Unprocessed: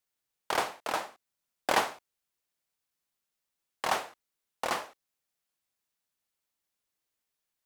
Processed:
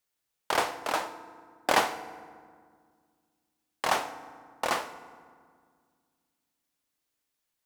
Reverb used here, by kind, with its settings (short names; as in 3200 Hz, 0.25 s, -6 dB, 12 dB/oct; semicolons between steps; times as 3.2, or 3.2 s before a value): FDN reverb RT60 1.9 s, low-frequency decay 1.45×, high-frequency decay 0.55×, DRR 11.5 dB; gain +2.5 dB